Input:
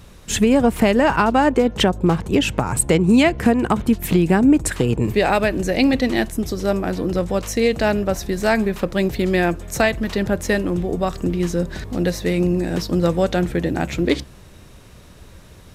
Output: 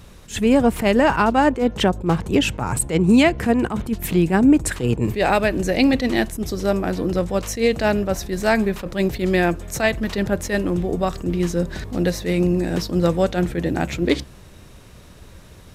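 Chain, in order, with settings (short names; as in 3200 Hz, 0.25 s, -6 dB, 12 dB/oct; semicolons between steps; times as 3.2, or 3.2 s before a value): attack slew limiter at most 190 dB/s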